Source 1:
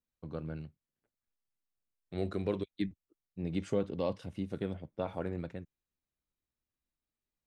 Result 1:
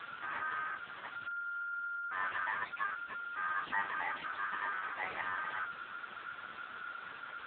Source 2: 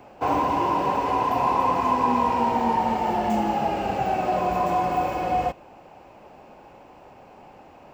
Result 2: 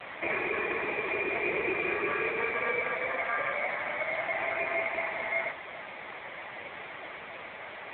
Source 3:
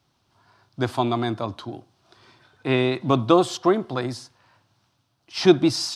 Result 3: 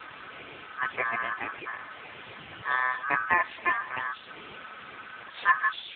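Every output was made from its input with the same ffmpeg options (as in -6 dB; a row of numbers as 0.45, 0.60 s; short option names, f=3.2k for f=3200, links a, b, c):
-af "aeval=exprs='val(0)+0.5*0.0596*sgn(val(0))':c=same,aeval=exprs='val(0)*sin(2*PI*1400*n/s)':c=same,volume=-4.5dB" -ar 8000 -c:a libopencore_amrnb -b:a 5900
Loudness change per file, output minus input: -1.0, -8.0, -6.5 LU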